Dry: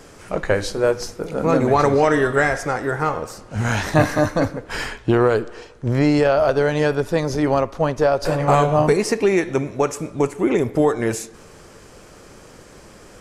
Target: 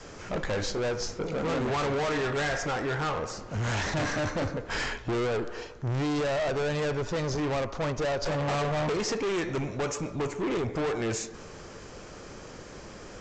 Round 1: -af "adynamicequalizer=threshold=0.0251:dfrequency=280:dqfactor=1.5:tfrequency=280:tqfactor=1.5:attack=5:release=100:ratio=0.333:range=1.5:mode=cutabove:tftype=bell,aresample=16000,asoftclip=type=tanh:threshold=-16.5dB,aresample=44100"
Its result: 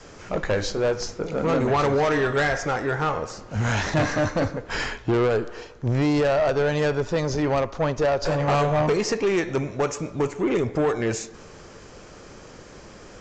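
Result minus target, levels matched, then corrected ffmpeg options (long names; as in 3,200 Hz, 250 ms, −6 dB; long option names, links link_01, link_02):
soft clipping: distortion −6 dB
-af "adynamicequalizer=threshold=0.0251:dfrequency=280:dqfactor=1.5:tfrequency=280:tqfactor=1.5:attack=5:release=100:ratio=0.333:range=1.5:mode=cutabove:tftype=bell,aresample=16000,asoftclip=type=tanh:threshold=-26.5dB,aresample=44100"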